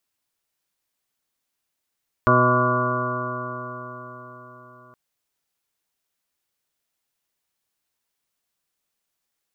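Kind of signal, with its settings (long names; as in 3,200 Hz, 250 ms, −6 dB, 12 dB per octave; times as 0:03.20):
stiff-string partials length 2.67 s, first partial 123 Hz, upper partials −2/−2.5/−7/0/−17/−18.5/−1.5/4/−14/−1 dB, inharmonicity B 0.00098, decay 4.55 s, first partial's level −20.5 dB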